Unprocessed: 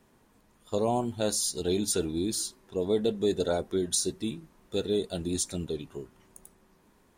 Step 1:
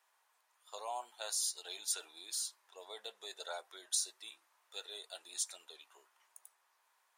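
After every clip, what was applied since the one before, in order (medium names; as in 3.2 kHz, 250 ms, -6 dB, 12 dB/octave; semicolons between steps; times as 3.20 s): high-pass 800 Hz 24 dB/octave; trim -6 dB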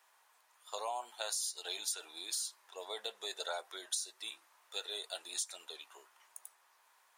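compression 6:1, threshold -41 dBFS, peak gain reduction 11 dB; trim +6.5 dB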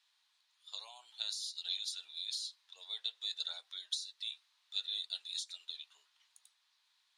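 band-pass filter 3.9 kHz, Q 3.5; trim +5.5 dB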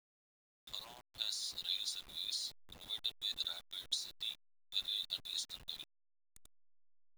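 send-on-delta sampling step -50 dBFS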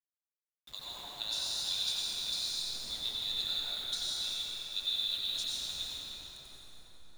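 reverberation RT60 5.7 s, pre-delay 77 ms, DRR -7.5 dB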